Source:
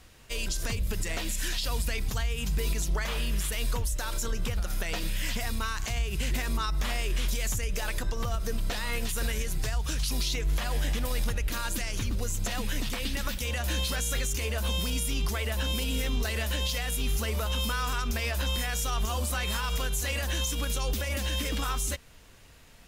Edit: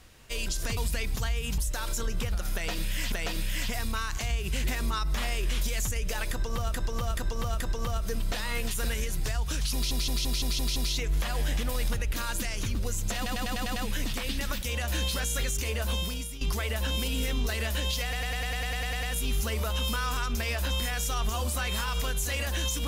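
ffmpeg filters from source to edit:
-filter_complex "[0:a]asplit=30[s0][s1][s2][s3][s4][s5][s6][s7][s8][s9][s10][s11][s12][s13][s14][s15][s16][s17][s18][s19][s20][s21][s22][s23][s24][s25][s26][s27][s28][s29];[s0]atrim=end=0.772[s30];[s1]atrim=start=1.708:end=2.522[s31];[s2]atrim=start=3.828:end=5.372[s32];[s3]atrim=start=4.788:end=8.412[s33];[s4]atrim=start=7.978:end=8.412[s34];[s5]atrim=start=7.978:end=8.412[s35];[s6]atrim=start=7.978:end=10.292[s36];[s7]atrim=start=10.118:end=10.292[s37];[s8]atrim=start=10.118:end=10.292[s38];[s9]atrim=start=10.118:end=10.292[s39];[s10]atrim=start=10.118:end=10.292[s40];[s11]atrim=start=10.118:end=10.292[s41];[s12]atrim=start=10.118:end=12.622[s42];[s13]atrim=start=12.518:end=12.622[s43];[s14]atrim=start=12.518:end=12.622[s44];[s15]atrim=start=12.518:end=12.622[s45];[s16]atrim=start=12.518:end=12.622[s46];[s17]atrim=start=12.518:end=12.622[s47];[s18]atrim=start=12.518:end=15.17,asetpts=PTS-STARTPTS,afade=t=out:st=2.162:d=0.49:silence=0.199526[s48];[s19]atrim=start=15.17:end=16.892,asetpts=PTS-STARTPTS,afade=t=in:d=0.004:c=hsin:silence=0.199526[s49];[s20]atrim=start=16.788:end=16.892[s50];[s21]atrim=start=16.788:end=16.892[s51];[s22]atrim=start=16.788:end=16.892[s52];[s23]atrim=start=16.788:end=16.892[s53];[s24]atrim=start=16.788:end=16.892[s54];[s25]atrim=start=16.788:end=16.892[s55];[s26]atrim=start=16.788:end=16.892[s56];[s27]atrim=start=16.788:end=16.892[s57];[s28]atrim=start=16.788:end=16.892[s58];[s29]atrim=start=16.788[s59];[s30][s31]acrossfade=d=0.004:c1=hsin:c2=hsin[s60];[s60][s32]acrossfade=d=0.004:c1=hsin:c2=hsin[s61];[s61][s33]acrossfade=d=0.004:c1=hsin:c2=hsin[s62];[s62][s34]acrossfade=d=0.004:c1=hsin:c2=hsin[s63];[s63][s35]acrossfade=d=0.004:c1=hsin:c2=hsin[s64];[s64][s36]acrossfade=d=0.004:c1=hsin:c2=hsin[s65];[s65][s37]acrossfade=d=0.004:c1=hsin:c2=hsin[s66];[s66][s38]acrossfade=d=0.004:c1=hsin:c2=hsin[s67];[s67][s39]acrossfade=d=0.004:c1=hsin:c2=hsin[s68];[s68][s40]acrossfade=d=0.004:c1=hsin:c2=hsin[s69];[s69][s41]acrossfade=d=0.004:c1=hsin:c2=hsin[s70];[s70][s42]acrossfade=d=0.004:c1=hsin:c2=hsin[s71];[s71][s43]acrossfade=d=0.004:c1=hsin:c2=hsin[s72];[s72][s44]acrossfade=d=0.004:c1=hsin:c2=hsin[s73];[s73][s45]acrossfade=d=0.004:c1=hsin:c2=hsin[s74];[s74][s46]acrossfade=d=0.004:c1=hsin:c2=hsin[s75];[s75][s47]acrossfade=d=0.004:c1=hsin:c2=hsin[s76];[s48][s49]concat=n=2:v=0:a=1[s77];[s76][s77]acrossfade=d=0.004:c1=hsin:c2=hsin[s78];[s78][s50]acrossfade=d=0.004:c1=hsin:c2=hsin[s79];[s79][s51]acrossfade=d=0.004:c1=hsin:c2=hsin[s80];[s80][s52]acrossfade=d=0.004:c1=hsin:c2=hsin[s81];[s81][s53]acrossfade=d=0.004:c1=hsin:c2=hsin[s82];[s82][s54]acrossfade=d=0.004:c1=hsin:c2=hsin[s83];[s83][s55]acrossfade=d=0.004:c1=hsin:c2=hsin[s84];[s84][s56]acrossfade=d=0.004:c1=hsin:c2=hsin[s85];[s85][s57]acrossfade=d=0.004:c1=hsin:c2=hsin[s86];[s86][s58]acrossfade=d=0.004:c1=hsin:c2=hsin[s87];[s87][s59]acrossfade=d=0.004:c1=hsin:c2=hsin"

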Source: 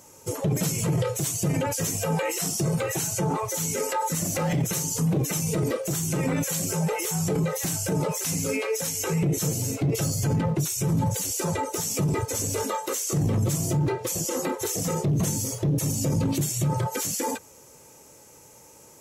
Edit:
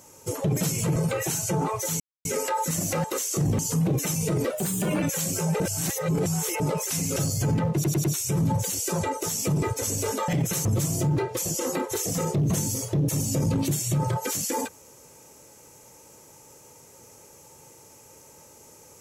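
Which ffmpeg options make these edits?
-filter_complex "[0:a]asplit=15[s0][s1][s2][s3][s4][s5][s6][s7][s8][s9][s10][s11][s12][s13][s14];[s0]atrim=end=0.962[s15];[s1]atrim=start=2.648:end=3.69,asetpts=PTS-STARTPTS,afade=t=out:st=1.038:d=0.004:c=hsin,apad=pad_dur=0.25[s16];[s2]atrim=start=3.69:end=4.482,asetpts=PTS-STARTPTS,afade=t=in:d=0.004:c=hsin[s17];[s3]atrim=start=12.798:end=13.352[s18];[s4]atrim=start=4.848:end=5.764[s19];[s5]atrim=start=5.76:end=6.36,asetpts=PTS-STARTPTS,asetrate=50715,aresample=44100[s20];[s6]atrim=start=6.356:end=6.942[s21];[s7]atrim=start=6.938:end=7.942,asetpts=PTS-STARTPTS,areverse[s22];[s8]atrim=start=7.938:end=8.502[s23];[s9]atrim=start=9.978:end=10.662[s24];[s10]atrim=start=10.558:end=10.662[s25];[s11]atrim=start=10.558:end=10.662[s26];[s12]atrim=start=10.558:end=12.802[s27];[s13]atrim=start=4.478:end=4.852[s28];[s14]atrim=start=13.348[s29];[s16][s17]concat=n=2:v=0:a=1[s30];[s15][s30]acrossfade=d=0.004:c1=hsin:c2=hsin[s31];[s31][s18]acrossfade=d=0.004:c1=hsin:c2=hsin[s32];[s32][s19]acrossfade=d=0.004:c1=hsin:c2=hsin[s33];[s33][s20]acrossfade=d=0.004:c1=hsin:c2=hsin[s34];[s34][s21]acrossfade=d=0.004:c1=hsin:c2=hsin[s35];[s35][s22]acrossfade=d=0.004:c1=hsin:c2=hsin[s36];[s36][s23]acrossfade=d=0.004:c1=hsin:c2=hsin[s37];[s37][s24]acrossfade=d=0.004:c1=hsin:c2=hsin[s38];[s38][s25]acrossfade=d=0.004:c1=hsin:c2=hsin[s39];[s39][s26]acrossfade=d=0.004:c1=hsin:c2=hsin[s40];[s40][s27]acrossfade=d=0.004:c1=hsin:c2=hsin[s41];[s41][s28]acrossfade=d=0.004:c1=hsin:c2=hsin[s42];[s42][s29]acrossfade=d=0.004:c1=hsin:c2=hsin"

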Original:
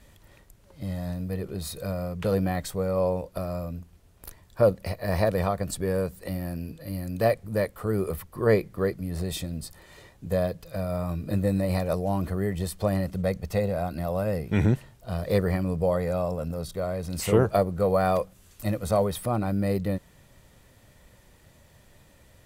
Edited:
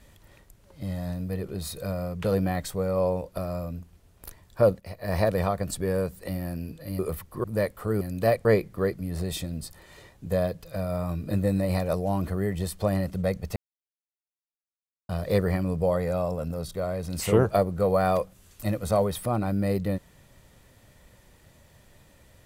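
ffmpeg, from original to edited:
-filter_complex "[0:a]asplit=8[s0][s1][s2][s3][s4][s5][s6][s7];[s0]atrim=end=4.8,asetpts=PTS-STARTPTS,afade=t=out:st=4.796:d=0.004:c=hsin:silence=0.188365[s8];[s1]atrim=start=4.8:end=6.992,asetpts=PTS-STARTPTS,afade=t=in:d=0.39:silence=0.188365[s9];[s2]atrim=start=7.998:end=8.452[s10];[s3]atrim=start=7.428:end=8.002[s11];[s4]atrim=start=6.988:end=7.432[s12];[s5]atrim=start=8.448:end=13.56,asetpts=PTS-STARTPTS,afade=t=out:st=5.108:d=0.004:c=hsin[s13];[s6]atrim=start=13.56:end=15.09,asetpts=PTS-STARTPTS,volume=0[s14];[s7]atrim=start=15.09,asetpts=PTS-STARTPTS,afade=t=in:d=0.004:c=hsin[s15];[s8][s9]concat=n=2:v=0:a=1[s16];[s16][s10]acrossfade=d=0.004:c1=hsin:c2=hsin[s17];[s17][s11]acrossfade=d=0.004:c1=hsin:c2=hsin[s18];[s18][s12]acrossfade=d=0.004:c1=hsin:c2=hsin[s19];[s13][s14][s15]concat=n=3:v=0:a=1[s20];[s19][s20]acrossfade=d=0.004:c1=hsin:c2=hsin"

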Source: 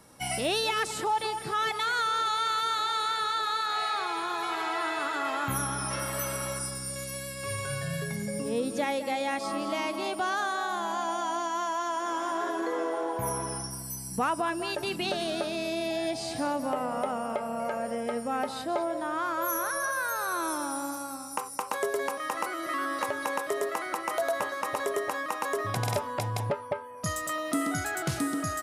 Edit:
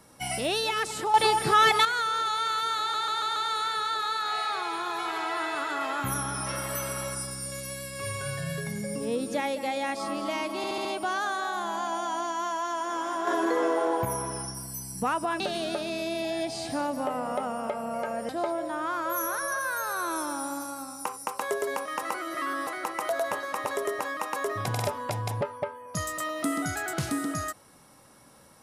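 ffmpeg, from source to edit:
-filter_complex "[0:a]asplit=16[s0][s1][s2][s3][s4][s5][s6][s7][s8][s9][s10][s11][s12][s13][s14][s15];[s0]atrim=end=1.142[s16];[s1]atrim=start=1.138:end=1.852,asetpts=PTS-STARTPTS,volume=2.82[s17];[s2]atrim=start=1.848:end=2.942[s18];[s3]atrim=start=2.798:end=2.942[s19];[s4]atrim=start=2.798:end=2.942[s20];[s5]atrim=start=2.798:end=2.942[s21];[s6]atrim=start=2.798:end=10.082[s22];[s7]atrim=start=10.008:end=10.082[s23];[s8]atrim=start=10.008:end=10.082[s24];[s9]atrim=start=10.008:end=10.082[s25];[s10]atrim=start=10.008:end=12.432[s26];[s11]atrim=start=12.428:end=13.212,asetpts=PTS-STARTPTS,volume=1.78[s27];[s12]atrim=start=13.208:end=14.562[s28];[s13]atrim=start=15.058:end=17.952[s29];[s14]atrim=start=18.608:end=22.992[s30];[s15]atrim=start=23.758[s31];[s16][s17]acrossfade=d=0.004:c1=hsin:c2=hsin[s32];[s32][s18]acrossfade=d=0.004:c1=hsin:c2=hsin[s33];[s33][s19]acrossfade=d=0.004:c1=hsin:c2=hsin[s34];[s34][s20]acrossfade=d=0.004:c1=hsin:c2=hsin[s35];[s35][s21]acrossfade=d=0.004:c1=hsin:c2=hsin[s36];[s36][s22]acrossfade=d=0.004:c1=hsin:c2=hsin[s37];[s37][s23]acrossfade=d=0.004:c1=hsin:c2=hsin[s38];[s38][s24]acrossfade=d=0.004:c1=hsin:c2=hsin[s39];[s39][s25]acrossfade=d=0.004:c1=hsin:c2=hsin[s40];[s40][s26]acrossfade=d=0.004:c1=hsin:c2=hsin[s41];[s41][s27]acrossfade=d=0.004:c1=hsin:c2=hsin[s42];[s42][s28]acrossfade=d=0.004:c1=hsin:c2=hsin[s43];[s43][s29]acrossfade=d=0.004:c1=hsin:c2=hsin[s44];[s44][s30]acrossfade=d=0.004:c1=hsin:c2=hsin[s45];[s45][s31]acrossfade=d=0.004:c1=hsin:c2=hsin"

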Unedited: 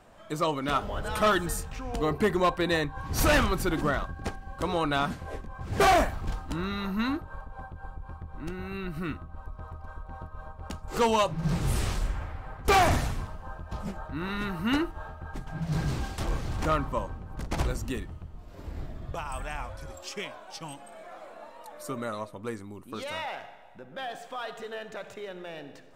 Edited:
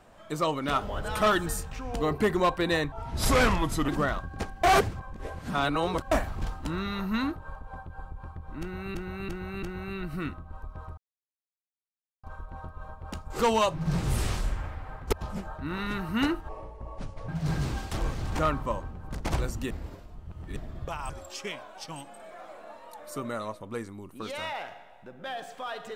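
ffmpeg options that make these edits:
-filter_complex "[0:a]asplit=15[s0][s1][s2][s3][s4][s5][s6][s7][s8][s9][s10][s11][s12][s13][s14];[s0]atrim=end=2.924[s15];[s1]atrim=start=2.92:end=3.74,asetpts=PTS-STARTPTS,asetrate=37485,aresample=44100[s16];[s2]atrim=start=3.736:end=4.492[s17];[s3]atrim=start=4.488:end=5.972,asetpts=PTS-STARTPTS,areverse[s18];[s4]atrim=start=5.968:end=8.802[s19];[s5]atrim=start=8.458:end=8.802[s20];[s6]atrim=start=8.458:end=8.802[s21];[s7]atrim=start=8.458:end=9.81,asetpts=PTS-STARTPTS,afade=t=out:st=1.348:d=0.004:c=hsin,apad=pad_dur=1.26[s22];[s8]atrim=start=9.81:end=12.702,asetpts=PTS-STARTPTS,afade=t=in:d=0.004:c=hsin[s23];[s9]atrim=start=13.628:end=14.994[s24];[s10]atrim=start=14.99:end=15.55,asetpts=PTS-STARTPTS,asetrate=30870,aresample=44100[s25];[s11]atrim=start=15.546:end=17.972[s26];[s12]atrim=start=17.968:end=18.832,asetpts=PTS-STARTPTS,areverse[s27];[s13]atrim=start=18.828:end=19.362[s28];[s14]atrim=start=19.818[s29];[s15][s16]acrossfade=d=0.004:c1=hsin:c2=hsin[s30];[s30][s17]acrossfade=d=0.004:c1=hsin:c2=hsin[s31];[s31][s18]acrossfade=d=0.004:c1=hsin:c2=hsin[s32];[s32][s19]acrossfade=d=0.004:c1=hsin:c2=hsin[s33];[s33][s20]acrossfade=d=0.004:c1=hsin:c2=hsin[s34];[s34][s21]acrossfade=d=0.004:c1=hsin:c2=hsin[s35];[s22][s23]concat=n=2:v=0:a=1[s36];[s35][s36]acrossfade=d=0.004:c1=hsin:c2=hsin[s37];[s37][s24]acrossfade=d=0.004:c1=hsin:c2=hsin[s38];[s38][s25]acrossfade=d=0.004:c1=hsin:c2=hsin[s39];[s39][s26]acrossfade=d=0.004:c1=hsin:c2=hsin[s40];[s40][s27]acrossfade=d=0.004:c1=hsin:c2=hsin[s41];[s41][s28]acrossfade=d=0.004:c1=hsin:c2=hsin[s42];[s42][s29]acrossfade=d=0.004:c1=hsin:c2=hsin"

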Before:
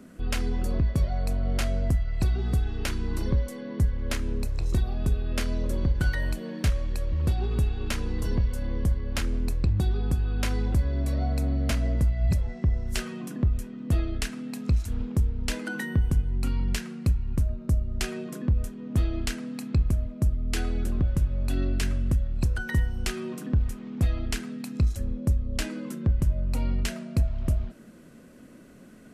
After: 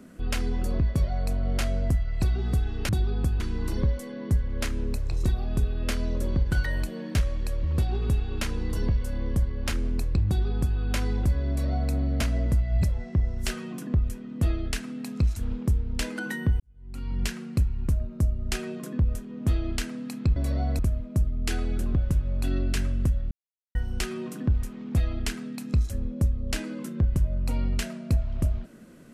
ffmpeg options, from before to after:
-filter_complex "[0:a]asplit=8[s0][s1][s2][s3][s4][s5][s6][s7];[s0]atrim=end=2.892[s8];[s1]atrim=start=9.758:end=10.272[s9];[s2]atrim=start=2.888:end=16.09,asetpts=PTS-STARTPTS,afade=t=out:st=13.198:d=0.004:c=hsin[s10];[s3]atrim=start=16.09:end=19.852,asetpts=PTS-STARTPTS,afade=t=in:d=0.64:c=qua[s11];[s4]atrim=start=10.978:end=11.412[s12];[s5]atrim=start=19.848:end=22.37,asetpts=PTS-STARTPTS,afade=t=out:st=2.518:d=0.004:c=hsin[s13];[s6]atrim=start=22.37:end=22.81,asetpts=PTS-STARTPTS,volume=0[s14];[s7]atrim=start=22.81,asetpts=PTS-STARTPTS,afade=t=in:d=0.004:c=hsin[s15];[s8][s9]acrossfade=d=0.004:c1=hsin:c2=hsin[s16];[s10][s11]concat=n=2:v=0:a=1[s17];[s16][s17]acrossfade=d=0.004:c1=hsin:c2=hsin[s18];[s18][s12]acrossfade=d=0.004:c1=hsin:c2=hsin[s19];[s13][s14][s15]concat=n=3:v=0:a=1[s20];[s19][s20]acrossfade=d=0.004:c1=hsin:c2=hsin"

